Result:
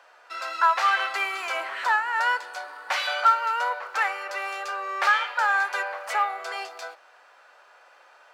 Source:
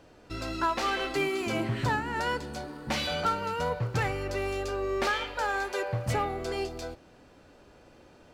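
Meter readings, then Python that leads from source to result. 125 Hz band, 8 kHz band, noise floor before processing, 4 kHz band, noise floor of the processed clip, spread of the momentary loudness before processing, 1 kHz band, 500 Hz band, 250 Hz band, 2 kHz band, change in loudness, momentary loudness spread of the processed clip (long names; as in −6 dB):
below −40 dB, +0.5 dB, −56 dBFS, +3.0 dB, −55 dBFS, 8 LU, +8.0 dB, −5.5 dB, below −20 dB, +9.0 dB, +6.0 dB, 14 LU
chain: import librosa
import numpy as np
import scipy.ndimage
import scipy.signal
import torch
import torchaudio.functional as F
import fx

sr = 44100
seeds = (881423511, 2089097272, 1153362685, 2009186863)

y = scipy.signal.sosfilt(scipy.signal.butter(4, 620.0, 'highpass', fs=sr, output='sos'), x)
y = fx.peak_eq(y, sr, hz=1400.0, db=10.5, octaves=1.6)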